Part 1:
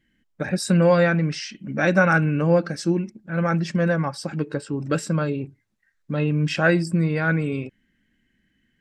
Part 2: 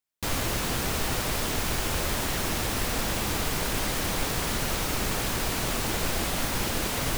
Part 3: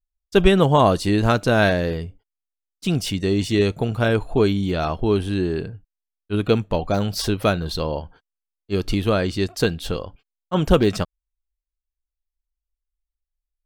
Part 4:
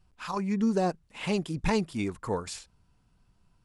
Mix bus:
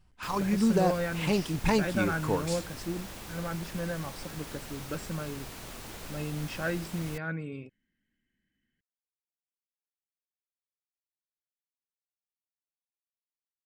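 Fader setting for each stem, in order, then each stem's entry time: -13.5 dB, -15.0 dB, off, +1.0 dB; 0.00 s, 0.00 s, off, 0.00 s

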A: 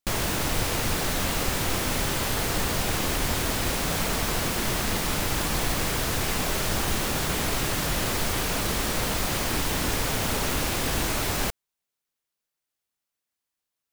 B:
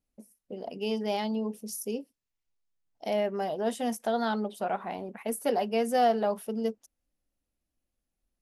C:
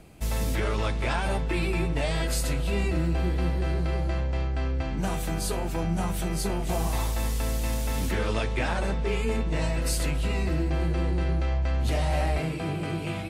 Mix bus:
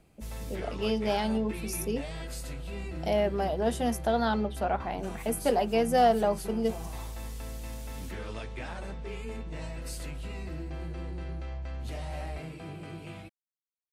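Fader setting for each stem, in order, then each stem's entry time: off, +1.5 dB, -11.5 dB; off, 0.00 s, 0.00 s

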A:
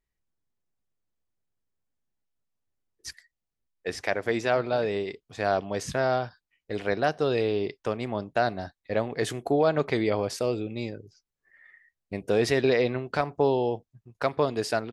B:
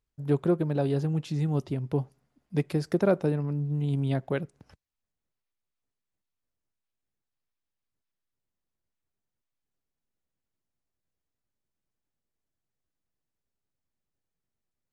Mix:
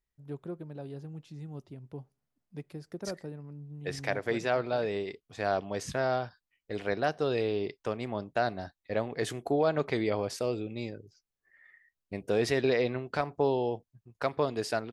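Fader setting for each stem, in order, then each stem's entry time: -4.0, -15.0 dB; 0.00, 0.00 s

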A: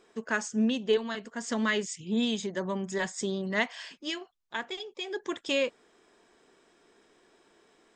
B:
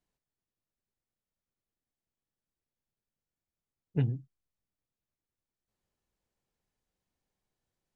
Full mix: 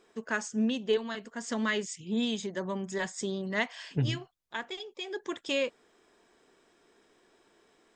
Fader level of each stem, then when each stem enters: -2.0, -0.5 dB; 0.00, 0.00 s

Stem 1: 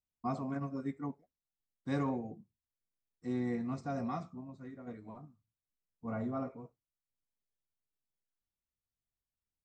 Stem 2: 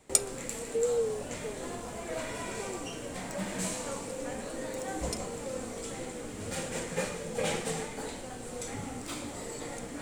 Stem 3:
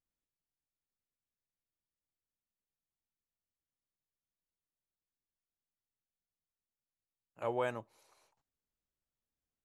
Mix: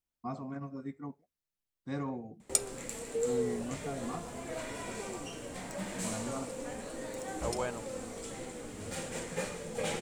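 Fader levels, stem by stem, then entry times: -3.0, -3.5, -1.5 dB; 0.00, 2.40, 0.00 s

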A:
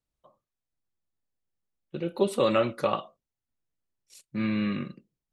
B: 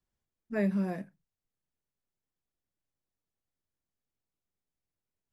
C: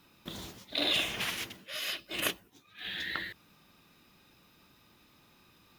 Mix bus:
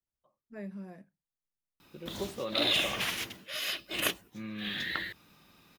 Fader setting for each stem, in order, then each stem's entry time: -13.0, -13.0, +1.5 dB; 0.00, 0.00, 1.80 s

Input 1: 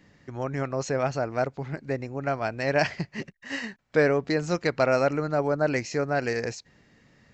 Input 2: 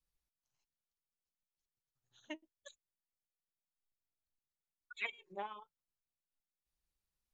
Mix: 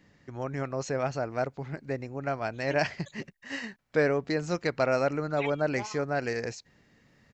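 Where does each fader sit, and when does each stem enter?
-3.5, +3.0 dB; 0.00, 0.40 s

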